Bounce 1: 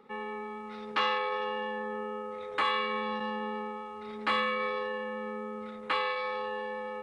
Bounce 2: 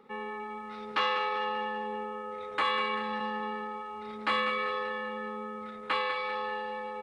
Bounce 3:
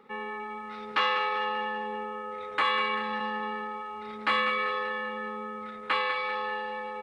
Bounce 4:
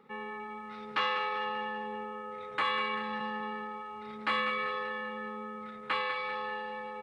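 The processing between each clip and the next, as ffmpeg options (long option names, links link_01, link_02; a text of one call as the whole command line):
ffmpeg -i in.wav -af "aecho=1:1:195|390|585|780|975:0.316|0.158|0.0791|0.0395|0.0198" out.wav
ffmpeg -i in.wav -af "equalizer=frequency=1900:width=0.75:gain=4" out.wav
ffmpeg -i in.wav -af "equalizer=frequency=140:width_type=o:width=0.79:gain=9.5,volume=-4.5dB" out.wav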